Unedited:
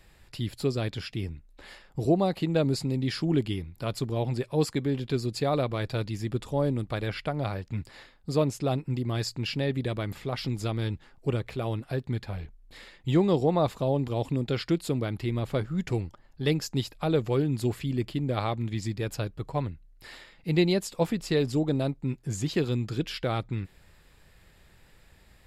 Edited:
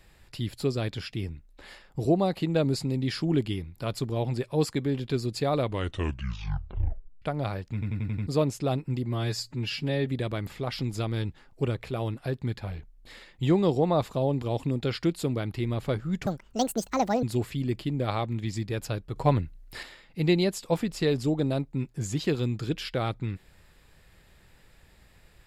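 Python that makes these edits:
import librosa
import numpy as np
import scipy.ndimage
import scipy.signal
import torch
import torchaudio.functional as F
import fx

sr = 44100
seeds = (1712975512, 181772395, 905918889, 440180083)

y = fx.edit(x, sr, fx.tape_stop(start_s=5.58, length_s=1.64),
    fx.stutter_over(start_s=7.73, slice_s=0.09, count=6),
    fx.stretch_span(start_s=9.03, length_s=0.69, factor=1.5),
    fx.speed_span(start_s=15.92, length_s=1.6, speed=1.66),
    fx.clip_gain(start_s=19.45, length_s=0.67, db=7.0), tone=tone)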